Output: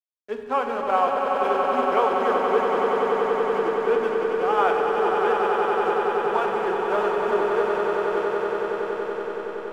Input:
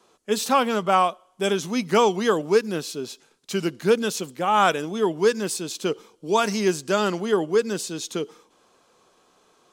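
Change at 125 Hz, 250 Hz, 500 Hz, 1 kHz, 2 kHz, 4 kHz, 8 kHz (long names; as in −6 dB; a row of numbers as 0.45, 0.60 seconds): −11.0 dB, −5.5 dB, +2.0 dB, +3.0 dB, +1.0 dB, −9.0 dB, below −20 dB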